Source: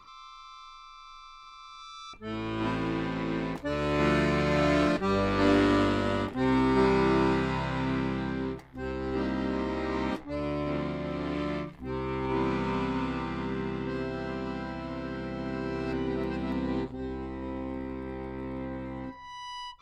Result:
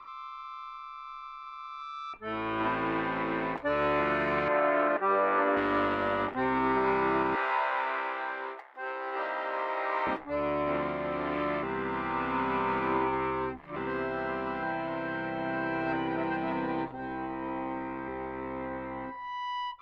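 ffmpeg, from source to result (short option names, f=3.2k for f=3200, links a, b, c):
-filter_complex "[0:a]asettb=1/sr,asplit=3[a][b][c];[a]atrim=end=4.484[d];[b]atrim=start=4.48:end=5.57,asetpts=PTS-STARTPTS,afade=t=in:d=0.004:c=qsin,afade=t=out:st=1.086:d=0.004:c=qsin,highpass=330,lowpass=2k[e];[c]atrim=start=5.566[f];[d][e]acrossfade=d=0.004:c1=hsin:c2=qsin[g];[g][f]acrossfade=d=0.004:c1=qsin:c2=hsin,asettb=1/sr,asplit=3[h][i][j];[h]atrim=end=7.354[k];[i]atrim=start=7.35:end=10.07,asetpts=PTS-STARTPTS,afade=t=in:d=0.004:c=qsin,afade=t=out:st=2.716:d=0.004:c=qsin,highpass=f=480:w=0.5412,highpass=f=480:w=1.3066[l];[j]atrim=start=10.066[m];[k][l]acrossfade=d=0.004:c1=hsin:c2=qsin[n];[n][m]acrossfade=d=0.004:c1=qsin:c2=hsin,asettb=1/sr,asplit=3[o][p][q];[o]atrim=end=14.624[r];[p]atrim=start=14.62:end=18.08,asetpts=PTS-STARTPTS,afade=t=in:d=0.004:c=qsin,afade=t=out:st=3.456:d=0.004:c=qsin,aecho=1:1:6.4:0.65,atrim=end_sample=152586[s];[q]atrim=start=18.076[t];[r][s]acrossfade=d=0.004:c1=hsin:c2=qsin[u];[u][t]acrossfade=d=0.004:c1=qsin:c2=hsin,asplit=3[v][w][x];[v]atrim=end=11.632[y];[w]atrim=start=11.628:end=13.762,asetpts=PTS-STARTPTS,areverse[z];[x]atrim=start=13.758[aa];[y][z]acrossfade=d=0.004:c1=hsin:c2=hsin[ab];[ab][aa]acrossfade=d=0.004:c1=hsin:c2=hsin,equalizer=f=480:w=2.4:g=-3,alimiter=limit=-21.5dB:level=0:latency=1:release=116,acrossover=split=400 2600:gain=0.178 1 0.0708[ac][ad][ae];[ac][ad][ae]amix=inputs=3:normalize=0,volume=7dB"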